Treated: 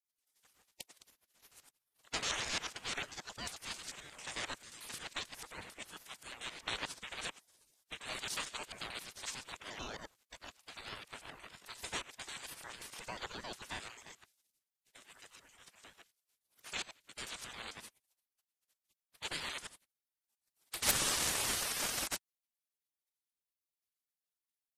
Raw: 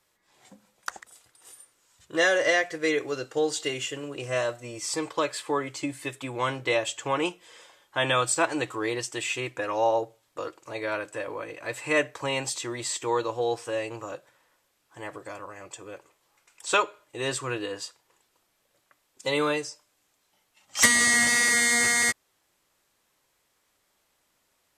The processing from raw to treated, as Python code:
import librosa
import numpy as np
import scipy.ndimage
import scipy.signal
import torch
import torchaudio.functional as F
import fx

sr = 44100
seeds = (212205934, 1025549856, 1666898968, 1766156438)

y = fx.local_reverse(x, sr, ms=89.0)
y = fx.spec_gate(y, sr, threshold_db=-20, keep='weak')
y = fx.ring_lfo(y, sr, carrier_hz=500.0, swing_pct=75, hz=3.2)
y = y * librosa.db_to_amplitude(1.5)